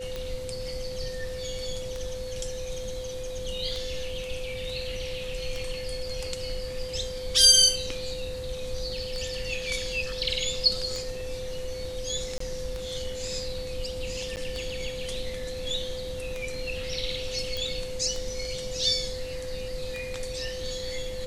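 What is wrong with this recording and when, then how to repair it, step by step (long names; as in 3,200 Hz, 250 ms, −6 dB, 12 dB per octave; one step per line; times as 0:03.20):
scratch tick 33 1/3 rpm −20 dBFS
whistle 510 Hz −34 dBFS
0:12.38–0:12.40: drop-out 24 ms
0:14.36–0:14.37: drop-out 8.8 ms
0:17.57: click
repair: click removal
notch filter 510 Hz, Q 30
repair the gap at 0:12.38, 24 ms
repair the gap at 0:14.36, 8.8 ms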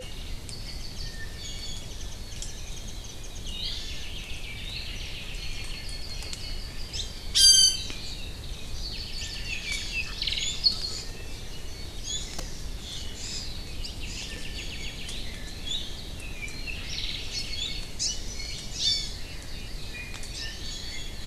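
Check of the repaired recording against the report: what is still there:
0:17.57: click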